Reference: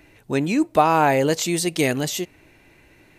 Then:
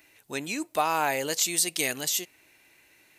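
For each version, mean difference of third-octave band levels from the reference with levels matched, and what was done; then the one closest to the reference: 6.5 dB: tilt EQ +3.5 dB/octave; trim -8 dB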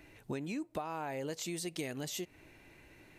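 3.5 dB: compression 12:1, threshold -30 dBFS, peak gain reduction 19.5 dB; trim -5.5 dB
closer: second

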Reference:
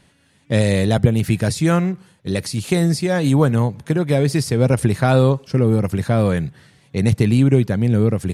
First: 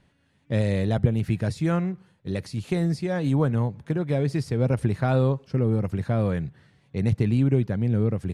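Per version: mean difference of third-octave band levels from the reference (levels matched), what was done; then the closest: 3.0 dB: low-pass 2.7 kHz 6 dB/octave; bass shelf 79 Hz +6 dB; trim -8 dB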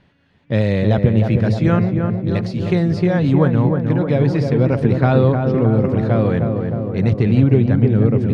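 8.0 dB: distance through air 240 m; filtered feedback delay 309 ms, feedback 73%, low-pass 1.4 kHz, level -4.5 dB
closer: first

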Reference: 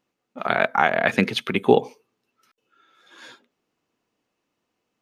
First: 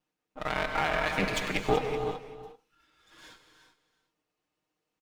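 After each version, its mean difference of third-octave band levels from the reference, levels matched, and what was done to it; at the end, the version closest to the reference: 9.0 dB: comb filter that takes the minimum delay 6.5 ms; on a send: delay 378 ms -13.5 dB; on the sum: gated-style reverb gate 410 ms flat, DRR 6.5 dB; peak limiter -8 dBFS, peak gain reduction 6 dB; trim -6 dB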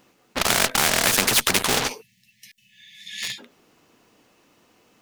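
15.0 dB: spectral selection erased 2.01–3.39 s, 230–1700 Hz; treble shelf 7.1 kHz +3.5 dB; in parallel at -9.5 dB: fuzz box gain 35 dB, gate -39 dBFS; on the sum: spectrum-flattening compressor 4:1; trim -1 dB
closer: first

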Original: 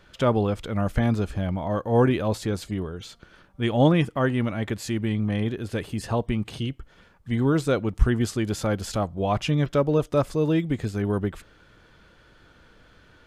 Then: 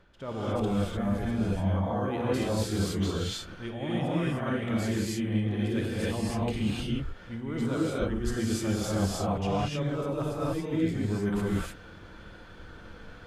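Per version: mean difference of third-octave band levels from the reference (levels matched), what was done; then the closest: 9.5 dB: reverse; compression 10:1, threshold -33 dBFS, peak gain reduction 22 dB; reverse; gated-style reverb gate 330 ms rising, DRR -7 dB; tape noise reduction on one side only decoder only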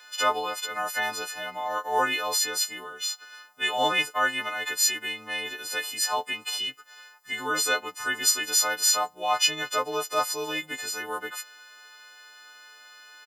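13.5 dB: partials quantised in pitch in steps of 3 st; high-pass 1 kHz 12 dB/octave; comb 7 ms, depth 39%; trim +4.5 dB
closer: first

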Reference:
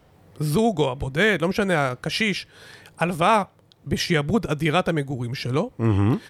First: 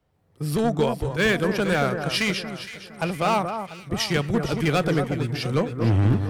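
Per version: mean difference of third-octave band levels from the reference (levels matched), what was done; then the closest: 6.0 dB: gain riding 2 s; overload inside the chain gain 17 dB; on a send: echo whose repeats swap between lows and highs 231 ms, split 1.6 kHz, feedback 68%, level -6 dB; on the sum: three bands expanded up and down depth 40%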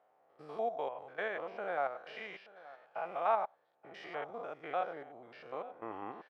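11.0 dB: spectrogram pixelated in time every 100 ms; ladder band-pass 870 Hz, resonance 40%; band-stop 950 Hz, Q 12; on a send: delay 878 ms -19.5 dB; on the sum: trim +1 dB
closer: first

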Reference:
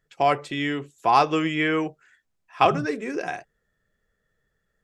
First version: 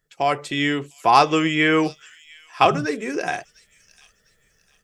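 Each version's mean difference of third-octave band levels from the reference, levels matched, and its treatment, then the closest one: 2.5 dB: level rider gain up to 10 dB; treble shelf 4.4 kHz +8 dB; on a send: feedback echo behind a high-pass 701 ms, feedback 33%, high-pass 4.4 kHz, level -13 dB; on the sum: trim -1.5 dB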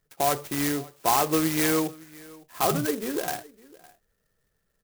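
10.5 dB: peak limiter -13 dBFS, peak gain reduction 8.5 dB; on a send: delay 559 ms -22.5 dB; on the sum: sampling jitter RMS 0.096 ms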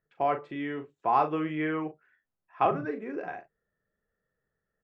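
4.5 dB: low-pass 1.6 kHz 12 dB/octave; bass shelf 86 Hz -9 dB; doubling 39 ms -8.5 dB; trim -6 dB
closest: first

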